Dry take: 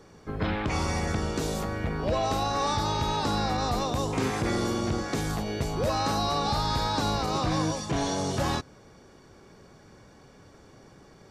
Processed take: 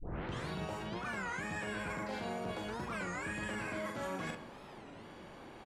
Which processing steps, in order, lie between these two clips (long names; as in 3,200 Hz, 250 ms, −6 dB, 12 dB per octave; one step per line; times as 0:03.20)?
turntable start at the beginning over 0.97 s
high-frequency loss of the air 300 metres
reversed playback
downward compressor 16 to 1, threshold −38 dBFS, peak gain reduction 16 dB
reversed playback
wrong playback speed 7.5 ips tape played at 15 ips
double-tracking delay 43 ms −4.5 dB
on a send at −9.5 dB: convolution reverb RT60 1.2 s, pre-delay 6 ms
on the sum: wow of a warped record 33 1/3 rpm, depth 250 cents